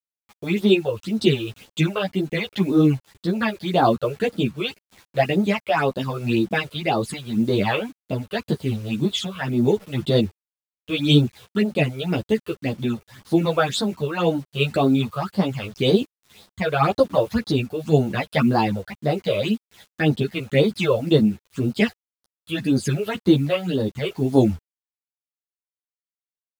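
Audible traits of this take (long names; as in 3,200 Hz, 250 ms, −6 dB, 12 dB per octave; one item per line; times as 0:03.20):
phaser sweep stages 8, 1.9 Hz, lowest notch 230–2,500 Hz
a quantiser's noise floor 8 bits, dither none
tremolo triangle 0.83 Hz, depth 40%
a shimmering, thickened sound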